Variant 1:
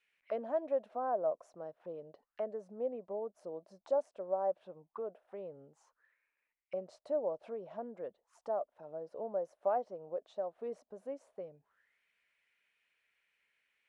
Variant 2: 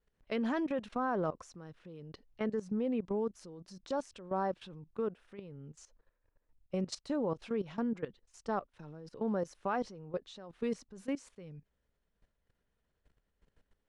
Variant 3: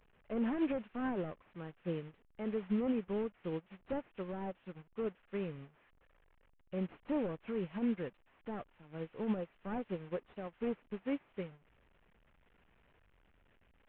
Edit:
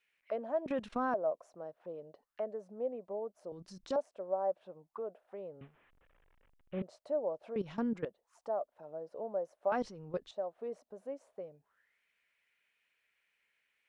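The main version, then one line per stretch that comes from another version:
1
0.66–1.14 from 2
3.52–3.96 from 2
5.61–6.82 from 3
7.56–8.05 from 2
9.72–10.31 from 2

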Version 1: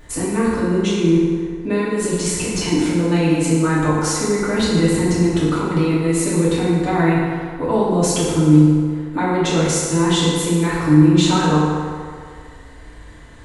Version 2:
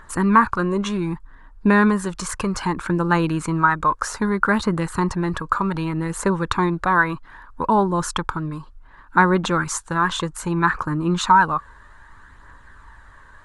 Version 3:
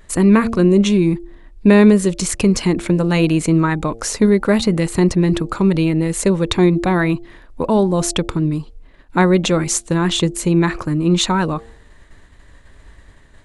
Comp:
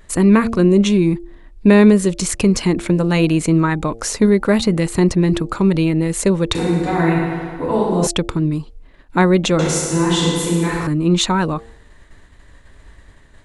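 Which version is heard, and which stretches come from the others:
3
6.55–8.07 from 1
9.59–10.87 from 1
not used: 2

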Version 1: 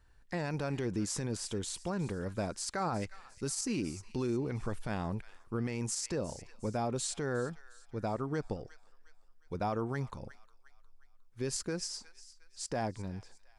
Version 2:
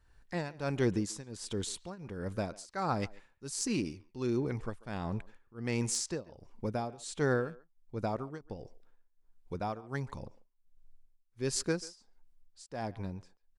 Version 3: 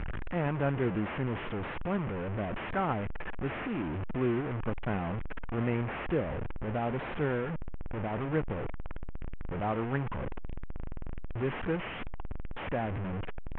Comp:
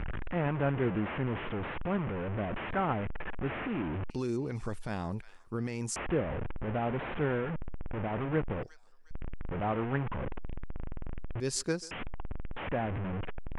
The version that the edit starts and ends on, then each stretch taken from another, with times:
3
4.1–5.96 from 1
8.63–9.11 from 1
11.4–11.91 from 2

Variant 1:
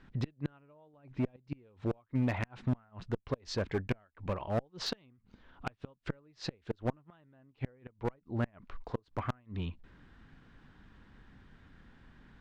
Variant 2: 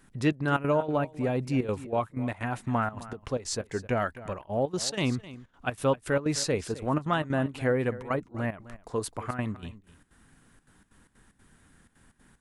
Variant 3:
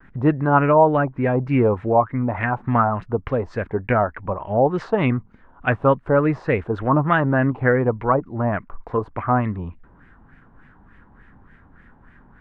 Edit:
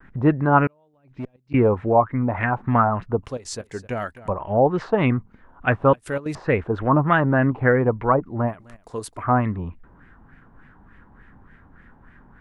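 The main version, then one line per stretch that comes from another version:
3
0.67–1.54 from 1
3.23–4.28 from 2
5.93–6.35 from 2
8.5–9.2 from 2, crossfade 0.10 s

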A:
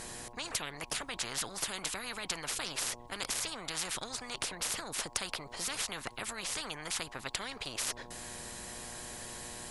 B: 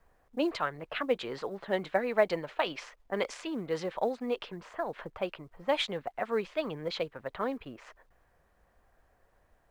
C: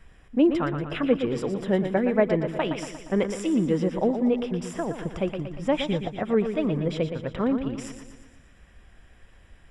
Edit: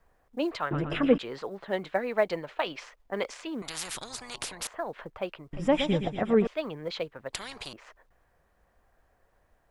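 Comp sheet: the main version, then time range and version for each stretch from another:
B
0.71–1.18 from C
3.62–4.67 from A
5.53–6.47 from C
7.33–7.73 from A

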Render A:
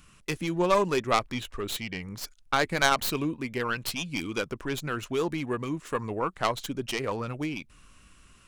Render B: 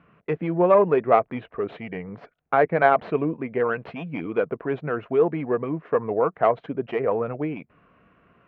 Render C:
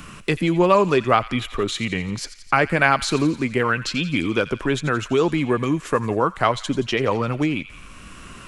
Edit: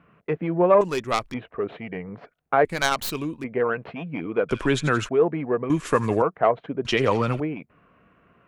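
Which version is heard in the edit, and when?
B
0.81–1.34 from A
2.65–3.44 from A
4.49–5.09 from C
5.7–6.22 from C
6.85–7.4 from C

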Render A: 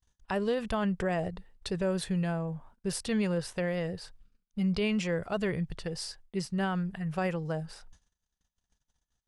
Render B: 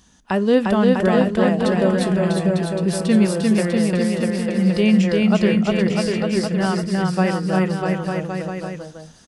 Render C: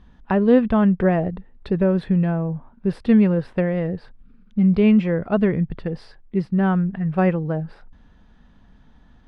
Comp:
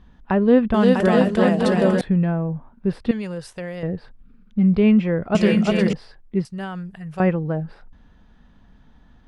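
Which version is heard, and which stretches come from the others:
C
0.74–2.01 from B
3.11–3.83 from A
5.35–5.93 from B
6.45–7.2 from A

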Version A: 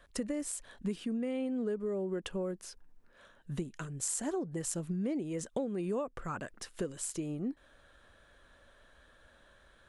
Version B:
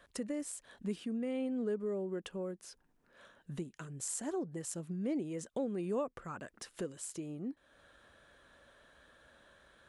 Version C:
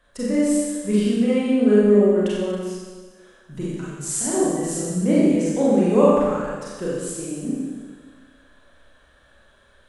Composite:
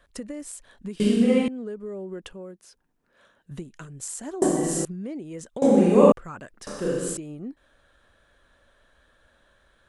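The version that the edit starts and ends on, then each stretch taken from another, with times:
A
1–1.48 from C
2.33–3.51 from B
4.42–4.85 from C
5.62–6.12 from C
6.67–7.17 from C

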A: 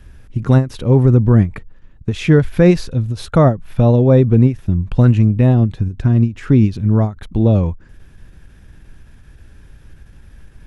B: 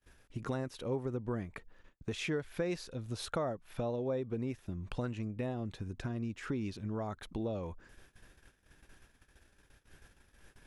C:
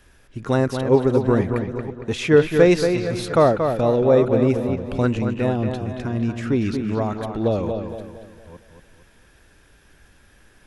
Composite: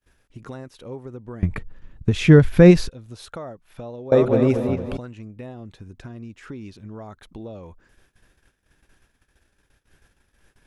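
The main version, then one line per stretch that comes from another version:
B
1.43–2.89 from A
4.12–4.97 from C

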